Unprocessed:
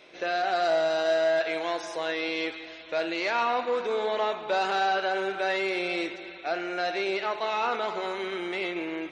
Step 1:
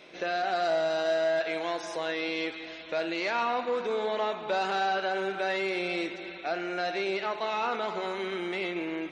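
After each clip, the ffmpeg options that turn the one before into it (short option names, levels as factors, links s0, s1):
-filter_complex "[0:a]equalizer=f=190:w=1.6:g=5.5,asplit=2[s0][s1];[s1]acompressor=threshold=0.0178:ratio=6,volume=0.891[s2];[s0][s2]amix=inputs=2:normalize=0,volume=0.596"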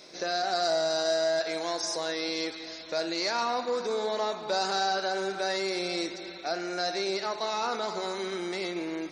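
-af "highshelf=f=3800:t=q:w=3:g=8.5"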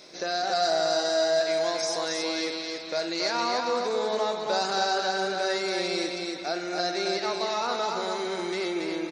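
-af "aecho=1:1:277|554|831|1108:0.631|0.196|0.0606|0.0188,volume=1.12"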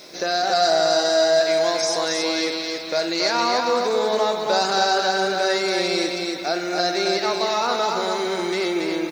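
-af "acrusher=bits=9:mix=0:aa=0.000001,volume=2.11"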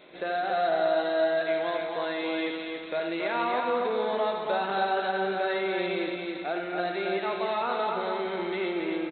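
-af "aecho=1:1:78:0.376,aresample=8000,aresample=44100,volume=0.447"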